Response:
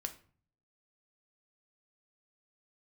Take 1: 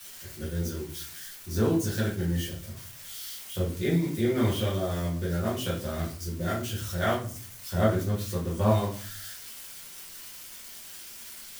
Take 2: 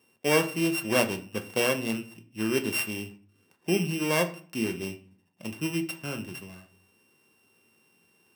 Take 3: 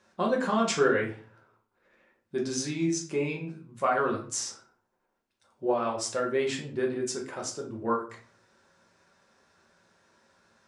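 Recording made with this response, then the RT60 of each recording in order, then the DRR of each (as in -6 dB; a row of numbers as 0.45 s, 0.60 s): 2; 0.45 s, 0.45 s, 0.45 s; -7.0 dB, 6.5 dB, -1.5 dB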